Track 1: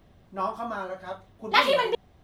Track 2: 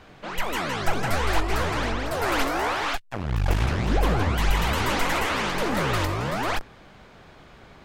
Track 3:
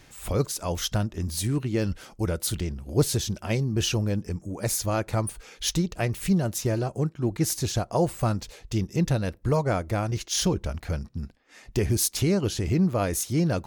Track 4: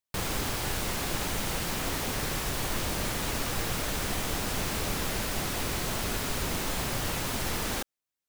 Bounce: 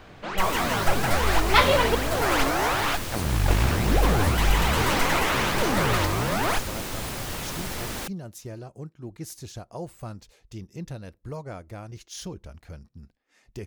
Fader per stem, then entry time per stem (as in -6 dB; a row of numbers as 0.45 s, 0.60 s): +1.0 dB, +1.0 dB, -12.5 dB, -1.5 dB; 0.00 s, 0.00 s, 1.80 s, 0.25 s